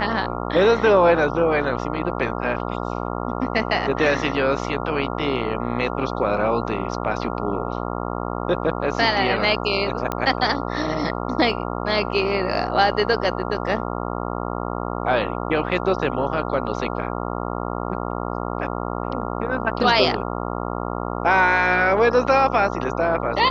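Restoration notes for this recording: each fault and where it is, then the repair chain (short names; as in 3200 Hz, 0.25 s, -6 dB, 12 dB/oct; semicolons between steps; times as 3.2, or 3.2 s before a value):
buzz 60 Hz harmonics 23 -27 dBFS
10.12 pop -10 dBFS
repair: de-click; de-hum 60 Hz, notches 23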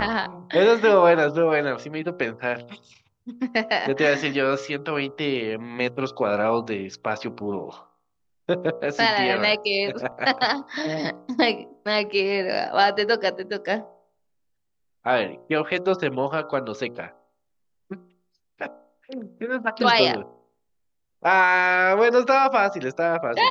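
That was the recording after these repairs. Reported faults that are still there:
none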